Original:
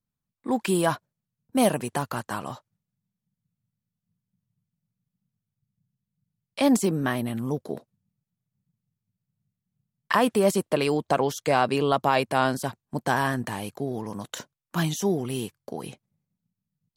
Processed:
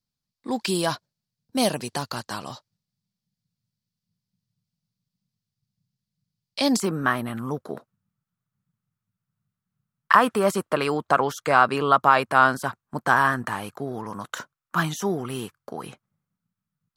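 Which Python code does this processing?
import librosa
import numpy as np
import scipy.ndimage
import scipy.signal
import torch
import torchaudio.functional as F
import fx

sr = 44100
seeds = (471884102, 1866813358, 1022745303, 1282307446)

y = fx.peak_eq(x, sr, hz=fx.steps((0.0, 4700.0), (6.8, 1300.0)), db=14.5, octaves=0.87)
y = y * librosa.db_to_amplitude(-2.0)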